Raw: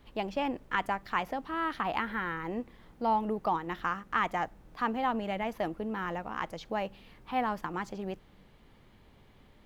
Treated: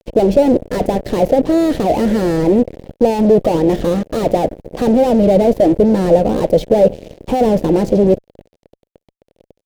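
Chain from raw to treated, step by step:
fuzz pedal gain 45 dB, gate −50 dBFS
low shelf with overshoot 800 Hz +13.5 dB, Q 3
level −11 dB

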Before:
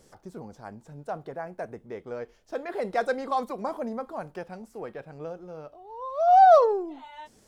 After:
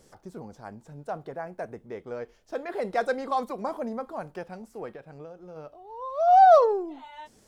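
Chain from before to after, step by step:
0:04.90–0:05.56: downward compressor 6 to 1, threshold −40 dBFS, peak gain reduction 8 dB

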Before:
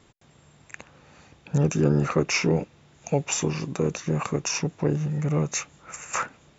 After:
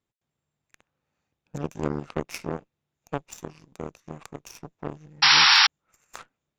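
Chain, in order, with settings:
harmonic generator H 3 −10 dB, 8 −37 dB, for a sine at −9.5 dBFS
sound drawn into the spectrogram noise, 0:05.22–0:05.67, 760–5,700 Hz −14 dBFS
level −2 dB

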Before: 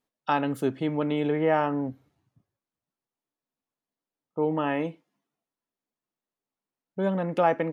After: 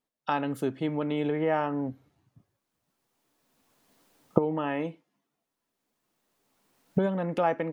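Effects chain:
camcorder AGC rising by 13 dB per second
level −3.5 dB

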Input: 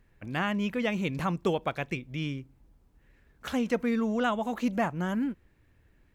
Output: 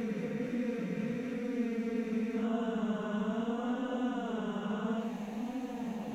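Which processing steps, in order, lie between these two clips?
spectrum averaged block by block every 400 ms
extreme stretch with random phases 6.5×, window 0.05 s, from 0:03.63
flanger 0.7 Hz, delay 9.6 ms, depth 8.7 ms, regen −45%

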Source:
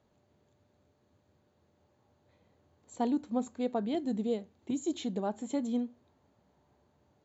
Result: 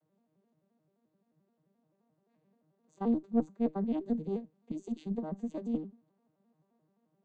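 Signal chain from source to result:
vocoder with an arpeggio as carrier major triad, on D#3, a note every 87 ms
harmonic generator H 2 −11 dB, 7 −36 dB, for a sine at −18 dBFS

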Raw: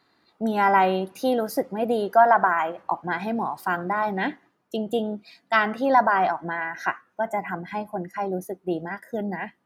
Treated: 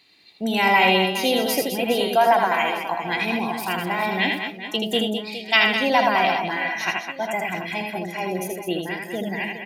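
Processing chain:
high shelf with overshoot 1,900 Hz +9.5 dB, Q 3
reverse bouncing-ball delay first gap 80 ms, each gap 1.6×, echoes 5

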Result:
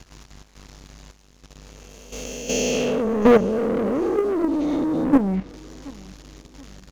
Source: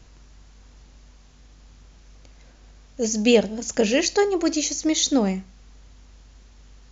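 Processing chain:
peak hold with a rise ahead of every peak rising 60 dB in 2.01 s
treble cut that deepens with the level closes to 450 Hz, closed at −14 dBFS
leveller curve on the samples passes 3
output level in coarse steps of 11 dB
on a send: repeating echo 728 ms, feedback 39%, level −22 dB

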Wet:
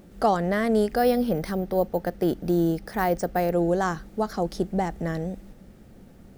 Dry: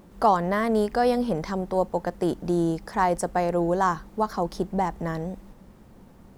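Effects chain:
parametric band 1,000 Hz −13 dB 0.39 octaves
0:00.96–0:03.52: bad sample-rate conversion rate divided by 3×, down filtered, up hold
level +1.5 dB

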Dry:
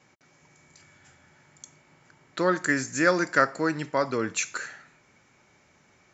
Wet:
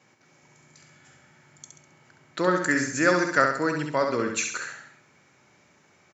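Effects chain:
high-pass filter 88 Hz
on a send: repeating echo 67 ms, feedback 44%, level −5 dB

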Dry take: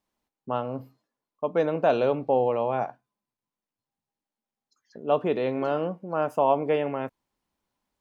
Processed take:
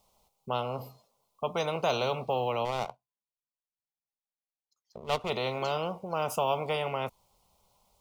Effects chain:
0:02.65–0:05.30: power curve on the samples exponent 1.4
phaser with its sweep stopped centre 700 Hz, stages 4
every bin compressed towards the loudest bin 2 to 1
level −5.5 dB

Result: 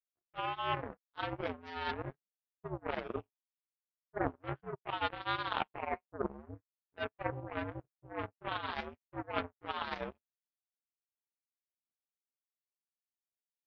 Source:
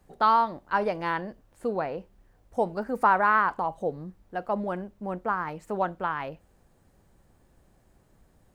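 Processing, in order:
multi-voice chorus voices 6, 0.28 Hz, delay 16 ms, depth 2.2 ms
single-sideband voice off tune −80 Hz 180–2,600 Hz
phase-vocoder stretch with locked phases 1.6×
reversed playback
downward compressor 10 to 1, threshold −40 dBFS, peak gain reduction 21.5 dB
reversed playback
power curve on the samples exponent 3
level +16 dB

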